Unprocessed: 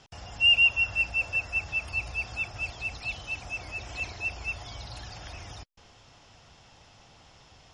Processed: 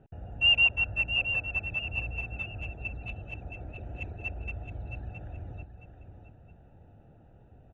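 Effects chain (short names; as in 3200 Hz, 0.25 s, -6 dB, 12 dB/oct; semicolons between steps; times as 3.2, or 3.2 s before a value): Wiener smoothing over 41 samples; running mean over 9 samples; feedback echo 0.668 s, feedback 31%, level -9.5 dB; gain +3.5 dB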